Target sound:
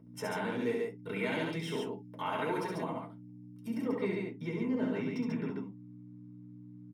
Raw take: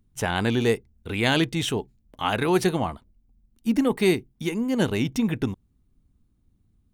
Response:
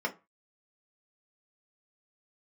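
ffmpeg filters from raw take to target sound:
-filter_complex "[0:a]asetnsamples=n=441:p=0,asendcmd='3.78 equalizer g -13',equalizer=f=12k:t=o:w=1.4:g=4.5,acompressor=threshold=-37dB:ratio=3,aeval=exprs='val(0)+0.00631*(sin(2*PI*60*n/s)+sin(2*PI*2*60*n/s)/2+sin(2*PI*3*60*n/s)/3+sin(2*PI*4*60*n/s)/4+sin(2*PI*5*60*n/s)/5)':c=same,aecho=1:1:67.06|139.9:0.631|0.708[a];[1:a]atrim=start_sample=2205,atrim=end_sample=3528[b];[a][b]afir=irnorm=-1:irlink=0,volume=-7dB"

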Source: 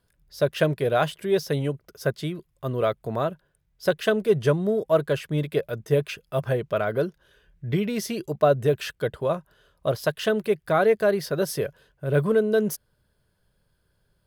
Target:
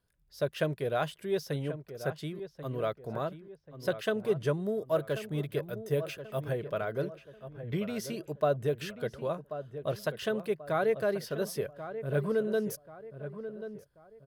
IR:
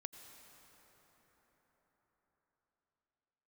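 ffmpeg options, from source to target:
-filter_complex "[0:a]asettb=1/sr,asplit=3[a][b][c];[a]atrim=end=4.534[d];[b]atrim=start=4.53:end=6.51,asetpts=PTS-STARTPTS,afade=t=in:d=0.004:c=qsin,afade=t=out:st=1.976:d=0.004:c=qsin,highshelf=f=11k:g=8.5[e];[c]atrim=start=6.506[f];[d][e]acrossfade=d=0.004:c1=hsin:c2=qsin[g];[g][f]acrossfade=d=0.004:c1=qsin:c2=hsin,asplit=2[h][i];[i]adelay=1086,lowpass=f=1.9k:p=1,volume=-11dB,asplit=2[j][k];[k]adelay=1086,lowpass=f=1.9k:p=1,volume=0.4,asplit=2[l][m];[m]adelay=1086,lowpass=f=1.9k:p=1,volume=0.4,asplit=2[n][o];[o]adelay=1086,lowpass=f=1.9k:p=1,volume=0.4[p];[j][l][n][p]amix=inputs=4:normalize=0[q];[h][q]amix=inputs=2:normalize=0,volume=-8.5dB"

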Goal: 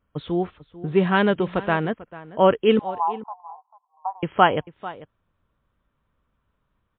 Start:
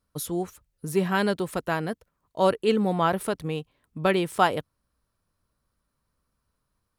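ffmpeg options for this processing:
-filter_complex "[0:a]asettb=1/sr,asplit=3[a][b][c];[a]atrim=end=2.794[d];[b]atrim=start=2.79:end=4.23,asetpts=PTS-STARTPTS,afade=t=in:d=0.004:c=qsin,afade=t=out:st=1.436:d=0.004:c=qsin,asuperpass=centerf=890:order=8:qfactor=2.7[e];[c]atrim=start=4.226[f];[d][e]acrossfade=d=0.004:c1=hsin:c2=qsin[g];[g][f]acrossfade=d=0.004:c1=qsin:c2=hsin,asplit=2[h][i];[i]adelay=443.1,volume=-17dB,highshelf=f=4k:g=-9.97[j];[h][j]amix=inputs=2:normalize=0,volume=5.5dB" -ar 8000 -c:a libmp3lame -b:a 32k

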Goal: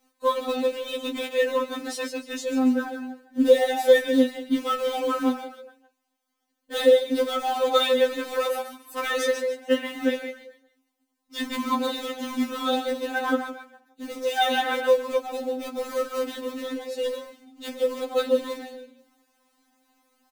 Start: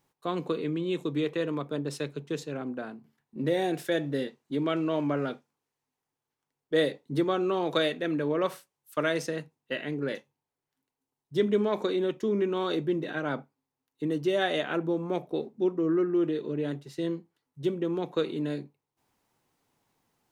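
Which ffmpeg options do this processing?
-filter_complex "[0:a]lowshelf=f=82:g=-3,asplit=5[a][b][c][d][e];[b]adelay=144,afreqshift=32,volume=-7dB[f];[c]adelay=288,afreqshift=64,volume=-17.2dB[g];[d]adelay=432,afreqshift=96,volume=-27.3dB[h];[e]adelay=576,afreqshift=128,volume=-37.5dB[i];[a][f][g][h][i]amix=inputs=5:normalize=0,asplit=2[j][k];[k]acrusher=bits=2:mode=log:mix=0:aa=0.000001,volume=-8dB[l];[j][l]amix=inputs=2:normalize=0,afftfilt=real='re*3.46*eq(mod(b,12),0)':imag='im*3.46*eq(mod(b,12),0)':win_size=2048:overlap=0.75,volume=6dB"

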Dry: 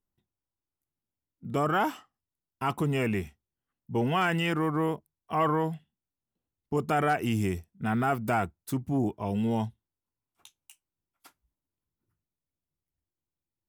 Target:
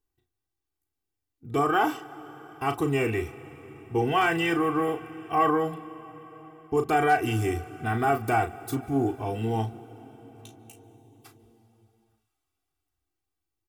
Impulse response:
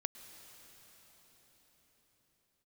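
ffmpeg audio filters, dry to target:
-filter_complex "[0:a]aecho=1:1:2.6:0.83,asplit=2[a][b];[1:a]atrim=start_sample=2205,adelay=36[c];[b][c]afir=irnorm=-1:irlink=0,volume=-6.5dB[d];[a][d]amix=inputs=2:normalize=0"

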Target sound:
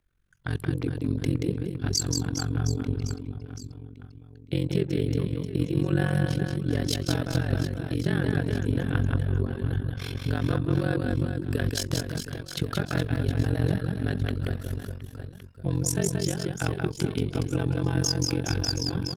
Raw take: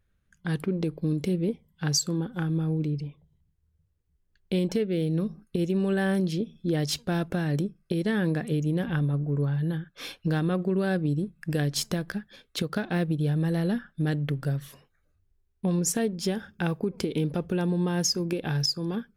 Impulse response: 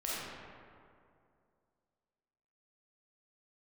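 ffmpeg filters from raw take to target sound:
-af "aecho=1:1:180|414|718.2|1114|1628:0.631|0.398|0.251|0.158|0.1,afreqshift=-48,tremolo=f=45:d=0.919,volume=2.5dB"

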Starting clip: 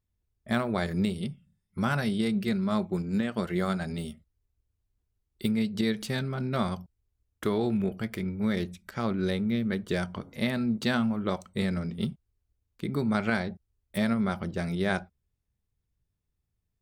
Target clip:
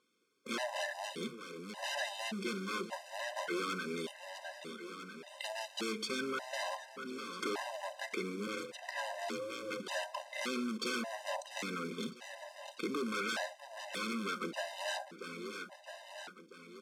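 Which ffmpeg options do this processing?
-filter_complex "[0:a]asplit=2[a][b];[b]highpass=f=720:p=1,volume=19dB,asoftclip=type=tanh:threshold=-13.5dB[c];[a][c]amix=inputs=2:normalize=0,lowpass=f=3.2k:p=1,volume=-6dB,acrusher=bits=3:mode=log:mix=0:aa=0.000001,aeval=exprs='0.0668*(abs(mod(val(0)/0.0668+3,4)-2)-1)':c=same,lowpass=9.4k,asplit=2[d][e];[e]aecho=0:1:650|1300|1950|2600:0.158|0.0729|0.0335|0.0154[f];[d][f]amix=inputs=2:normalize=0,asettb=1/sr,asplit=3[g][h][i];[g]atrim=end=8.474[j];[h]atrim=start=8.47:end=9.8,asetpts=PTS-STARTPTS,afade=t=in:d=0.004:c=qsin,afade=t=out:st=1.326:d=0.004:c=qsin,aeval=exprs='val(0)*sin(2*PI*320*n/s)':c=same[k];[i]atrim=start=9.796[l];[j][k]acrossfade=d=0.004:c1=hsin:c2=qsin[m];[m][l]acrossfade=d=0.004:c1=qsin:c2=hsin,acompressor=threshold=-48dB:ratio=2.5,highpass=f=240:w=0.5412,highpass=f=240:w=1.3066,afftfilt=real='re*gt(sin(2*PI*0.86*pts/sr)*(1-2*mod(floor(b*sr/1024/520),2)),0)':imag='im*gt(sin(2*PI*0.86*pts/sr)*(1-2*mod(floor(b*sr/1024/520),2)),0)':win_size=1024:overlap=0.75,volume=8.5dB"

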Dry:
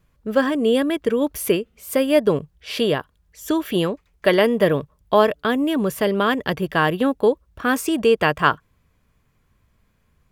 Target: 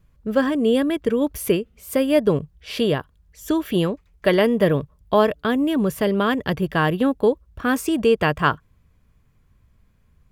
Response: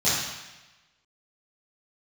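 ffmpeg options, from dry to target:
-af "lowshelf=f=200:g=9,volume=-2.5dB"

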